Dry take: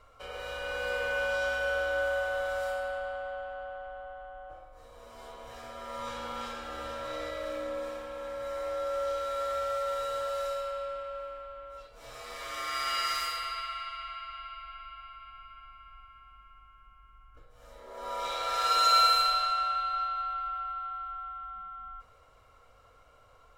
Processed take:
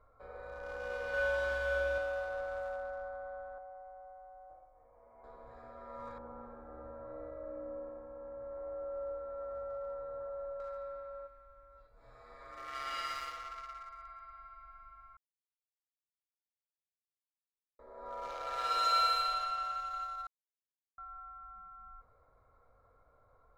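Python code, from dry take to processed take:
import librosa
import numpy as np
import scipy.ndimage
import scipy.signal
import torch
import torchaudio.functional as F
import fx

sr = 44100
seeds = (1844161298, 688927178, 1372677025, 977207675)

y = fx.room_flutter(x, sr, wall_m=7.7, rt60_s=1.0, at=(1.09, 1.98))
y = fx.cheby_ripple(y, sr, hz=3000.0, ripple_db=9, at=(3.58, 5.24))
y = fx.bessel_lowpass(y, sr, hz=860.0, order=2, at=(6.18, 10.6))
y = fx.peak_eq(y, sr, hz=500.0, db=fx.line((11.26, -12.5), (12.73, -1.5)), octaves=2.7, at=(11.26, 12.73), fade=0.02)
y = fx.edit(y, sr, fx.silence(start_s=15.17, length_s=2.62),
    fx.silence(start_s=20.27, length_s=0.71), tone=tone)
y = fx.wiener(y, sr, points=15)
y = fx.high_shelf(y, sr, hz=4500.0, db=-7.0)
y = y * librosa.db_to_amplitude(-5.5)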